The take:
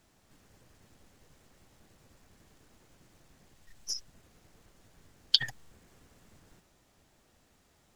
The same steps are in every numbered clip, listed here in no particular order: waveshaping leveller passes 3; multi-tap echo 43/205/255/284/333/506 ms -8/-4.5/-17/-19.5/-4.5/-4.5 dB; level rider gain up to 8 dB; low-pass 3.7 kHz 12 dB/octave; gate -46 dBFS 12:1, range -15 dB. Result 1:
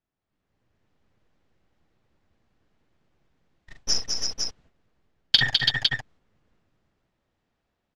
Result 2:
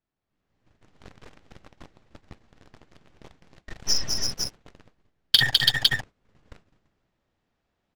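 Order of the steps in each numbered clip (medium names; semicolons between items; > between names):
level rider > waveshaping leveller > low-pass > gate > multi-tap echo; multi-tap echo > level rider > low-pass > gate > waveshaping leveller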